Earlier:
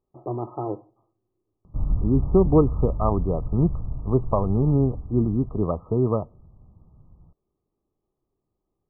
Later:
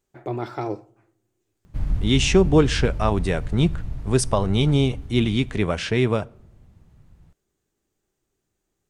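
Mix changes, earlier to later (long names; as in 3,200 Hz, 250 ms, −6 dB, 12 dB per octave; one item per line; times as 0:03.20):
speech: send +9.0 dB
master: remove linear-phase brick-wall low-pass 1,300 Hz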